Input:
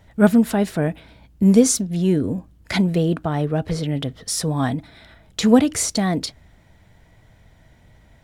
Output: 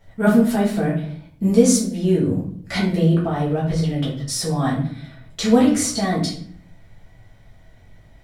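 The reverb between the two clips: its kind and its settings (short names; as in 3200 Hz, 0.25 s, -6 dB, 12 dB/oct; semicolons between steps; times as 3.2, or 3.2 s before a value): shoebox room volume 65 m³, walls mixed, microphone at 1.6 m; gain -7.5 dB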